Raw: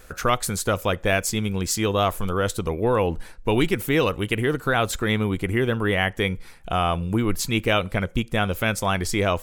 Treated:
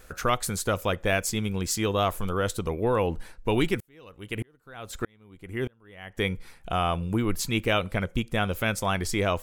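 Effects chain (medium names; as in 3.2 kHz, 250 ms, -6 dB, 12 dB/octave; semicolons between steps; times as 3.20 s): 3.80–6.18 s: sawtooth tremolo in dB swelling 1.6 Hz, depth 39 dB; trim -3.5 dB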